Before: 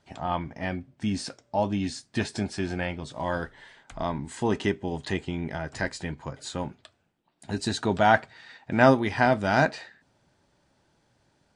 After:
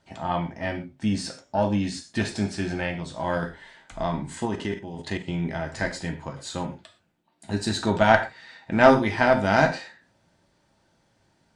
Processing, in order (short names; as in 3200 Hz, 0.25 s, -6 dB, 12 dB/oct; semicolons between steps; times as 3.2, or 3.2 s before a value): non-linear reverb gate 0.15 s falling, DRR 2.5 dB; 4.45–5.28 level quantiser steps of 9 dB; added harmonics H 4 -19 dB, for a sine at -2 dBFS